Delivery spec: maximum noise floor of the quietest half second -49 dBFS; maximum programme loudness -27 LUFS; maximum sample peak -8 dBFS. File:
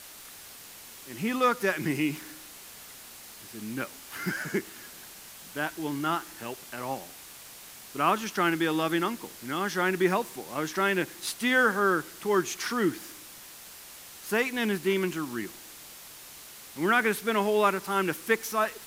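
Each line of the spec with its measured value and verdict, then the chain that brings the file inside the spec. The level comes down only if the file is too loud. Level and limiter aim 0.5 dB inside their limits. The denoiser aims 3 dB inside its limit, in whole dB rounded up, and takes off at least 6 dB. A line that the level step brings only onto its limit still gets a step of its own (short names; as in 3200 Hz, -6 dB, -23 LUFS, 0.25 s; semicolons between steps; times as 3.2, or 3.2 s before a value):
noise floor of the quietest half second -47 dBFS: fail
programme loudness -28.5 LUFS: OK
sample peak -10.0 dBFS: OK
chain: denoiser 6 dB, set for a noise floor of -47 dBFS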